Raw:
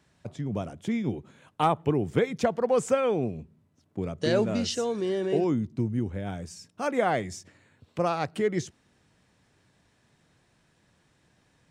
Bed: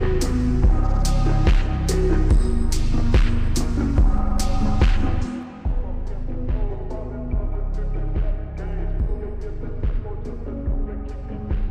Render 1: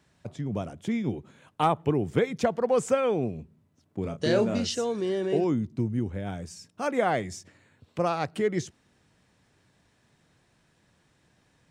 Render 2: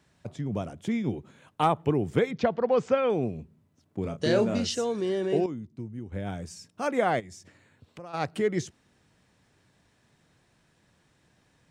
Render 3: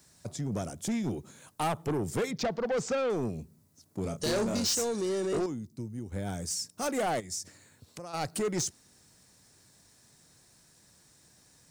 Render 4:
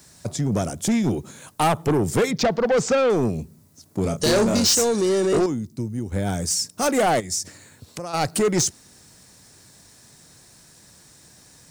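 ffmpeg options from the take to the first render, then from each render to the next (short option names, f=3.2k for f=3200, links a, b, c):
-filter_complex "[0:a]asettb=1/sr,asplit=3[a][b][c];[a]atrim=end=4.014[d];[b]atrim=start=4.01:end=4.6,asetpts=PTS-STARTPTS,afade=t=in:d=0.004:c=qsin,afade=t=out:st=0.586:d=0.004:c=qsin,asplit=2[e][f];[f]adelay=31,volume=-7.5dB[g];[e][g]amix=inputs=2:normalize=0,atrim=end_sample=26019[h];[c]atrim=start=4.596[i];[d][h]acrossfade=d=0.004:c1=hsin:c2=qsin[j];[j][i]acrossfade=d=0.004:c1=qsin:c2=hsin"
-filter_complex "[0:a]asettb=1/sr,asplit=3[a][b][c];[a]atrim=end=2.314[d];[b]atrim=start=2.31:end=3.1,asetpts=PTS-STARTPTS,afade=t=in:d=0.004:c=qsin,afade=t=out:st=0.786:d=0.004:c=qsin,lowpass=f=4.8k:w=0.5412,lowpass=f=4.8k:w=1.3066[e];[c]atrim=start=3.096[f];[d][e]acrossfade=d=0.004:c1=hsin:c2=qsin[g];[g][f]acrossfade=d=0.004:c1=qsin:c2=hsin,asplit=3[h][i][j];[h]afade=t=out:st=7.19:d=0.02[k];[i]acompressor=threshold=-45dB:ratio=3:attack=3.2:release=140:knee=1:detection=peak,afade=t=in:st=7.19:d=0.02,afade=t=out:st=8.13:d=0.02[l];[j]afade=t=in:st=8.13:d=0.02[m];[k][l][m]amix=inputs=3:normalize=0,asplit=3[n][o][p];[n]atrim=end=5.462[q];[o]atrim=start=5.458:end=6.122,asetpts=PTS-STARTPTS,volume=-10dB[r];[p]atrim=start=6.118[s];[q][r]acrossfade=d=0.004:c1=hsin:c2=hsin[t];[t][s]acrossfade=d=0.004:c1=hsin:c2=hsin"
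-af "aexciter=amount=4.9:drive=5.4:freq=4.3k,asoftclip=type=tanh:threshold=-25.5dB"
-af "volume=10.5dB"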